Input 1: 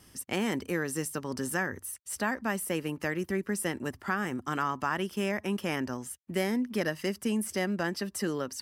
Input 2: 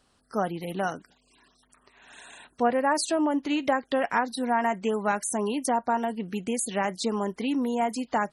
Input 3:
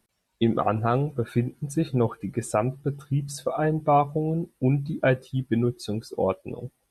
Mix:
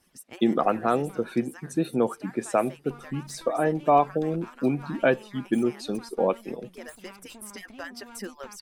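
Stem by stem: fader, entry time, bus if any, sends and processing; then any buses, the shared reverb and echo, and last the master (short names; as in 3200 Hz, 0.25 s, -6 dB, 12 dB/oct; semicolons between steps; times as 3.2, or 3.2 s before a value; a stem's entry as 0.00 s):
-4.0 dB, 0.00 s, no send, median-filter separation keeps percussive; auto duck -9 dB, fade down 0.30 s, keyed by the third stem
-9.5 dB, 0.30 s, no send, minimum comb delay 0.82 ms; compressor 6:1, threshold -36 dBFS, peak gain reduction 15.5 dB
+1.0 dB, 0.00 s, no send, HPF 190 Hz 24 dB/oct; high shelf 9000 Hz -9 dB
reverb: off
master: dry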